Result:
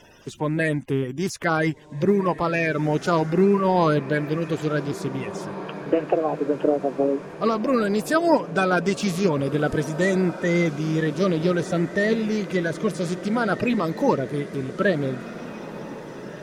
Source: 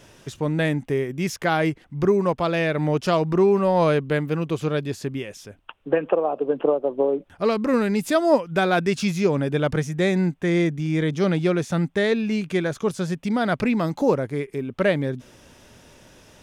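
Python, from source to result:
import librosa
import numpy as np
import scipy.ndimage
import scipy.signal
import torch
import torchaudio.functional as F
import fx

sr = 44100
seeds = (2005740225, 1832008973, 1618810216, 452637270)

y = fx.spec_quant(x, sr, step_db=30)
y = fx.echo_diffused(y, sr, ms=1800, feedback_pct=60, wet_db=-14.0)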